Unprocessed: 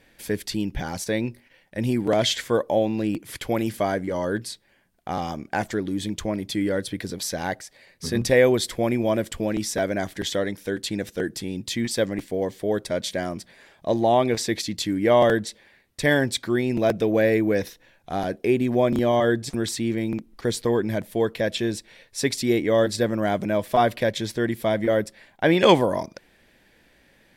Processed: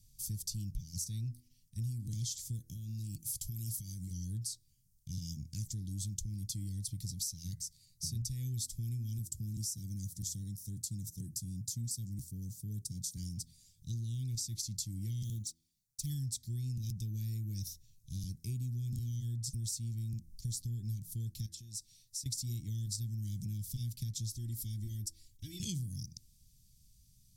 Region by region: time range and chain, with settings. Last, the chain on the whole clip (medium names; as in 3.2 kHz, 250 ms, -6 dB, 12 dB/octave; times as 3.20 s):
2.73–4.11 s: treble shelf 6 kHz +8 dB + compression 3:1, threshold -28 dBFS
9.18–13.17 s: high-pass 86 Hz + peaking EQ 2.7 kHz -13 dB 1.4 oct
15.23–16.10 s: companding laws mixed up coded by A + bass shelf 79 Hz -9.5 dB + touch-sensitive flanger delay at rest 8.1 ms, full sweep at -21 dBFS
21.46–22.26 s: bass shelf 180 Hz -10.5 dB + compression 16:1, threshold -35 dBFS
24.31–25.60 s: compression 1.5:1, threshold -30 dBFS + comb 3.1 ms, depth 80%
whole clip: elliptic band-stop 130–5700 Hz, stop band 80 dB; de-hum 81.82 Hz, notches 26; compression 6:1, threshold -38 dBFS; trim +2.5 dB